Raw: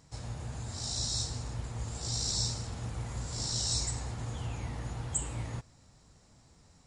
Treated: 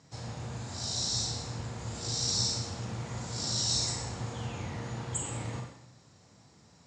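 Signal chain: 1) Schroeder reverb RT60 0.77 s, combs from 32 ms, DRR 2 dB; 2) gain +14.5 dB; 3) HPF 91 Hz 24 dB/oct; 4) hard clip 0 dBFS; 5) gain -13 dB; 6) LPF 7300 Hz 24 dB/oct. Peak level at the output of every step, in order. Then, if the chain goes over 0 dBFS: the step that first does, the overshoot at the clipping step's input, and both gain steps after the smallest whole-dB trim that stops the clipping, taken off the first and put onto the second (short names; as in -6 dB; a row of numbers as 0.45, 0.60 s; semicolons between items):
-15.0, -0.5, -1.5, -1.5, -14.5, -16.0 dBFS; no overload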